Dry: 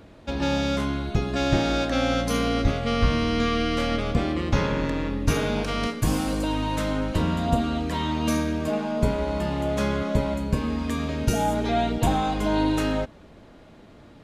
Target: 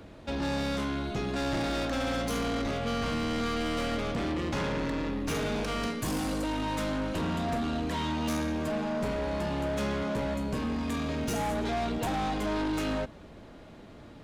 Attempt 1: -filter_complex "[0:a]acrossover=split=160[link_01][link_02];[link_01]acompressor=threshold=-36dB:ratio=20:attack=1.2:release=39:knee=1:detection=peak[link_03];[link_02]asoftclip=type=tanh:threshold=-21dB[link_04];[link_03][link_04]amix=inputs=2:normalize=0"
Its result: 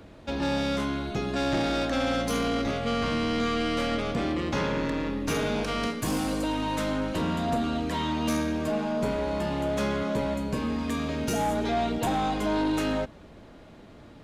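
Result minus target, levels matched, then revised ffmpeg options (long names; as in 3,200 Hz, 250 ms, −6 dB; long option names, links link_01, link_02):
soft clipping: distortion −7 dB
-filter_complex "[0:a]acrossover=split=160[link_01][link_02];[link_01]acompressor=threshold=-36dB:ratio=20:attack=1.2:release=39:knee=1:detection=peak[link_03];[link_02]asoftclip=type=tanh:threshold=-28.5dB[link_04];[link_03][link_04]amix=inputs=2:normalize=0"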